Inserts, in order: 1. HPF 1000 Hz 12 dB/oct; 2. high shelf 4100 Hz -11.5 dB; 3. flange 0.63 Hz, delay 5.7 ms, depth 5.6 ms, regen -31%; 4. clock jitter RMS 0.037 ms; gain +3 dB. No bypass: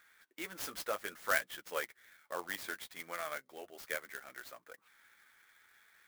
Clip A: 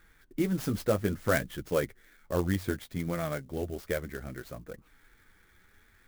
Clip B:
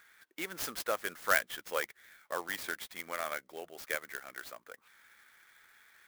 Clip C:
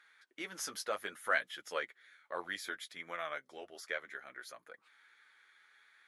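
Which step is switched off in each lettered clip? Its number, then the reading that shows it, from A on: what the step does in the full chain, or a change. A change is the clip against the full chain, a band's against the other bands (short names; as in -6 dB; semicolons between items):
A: 1, 125 Hz band +29.0 dB; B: 3, loudness change +3.5 LU; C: 4, 125 Hz band -2.5 dB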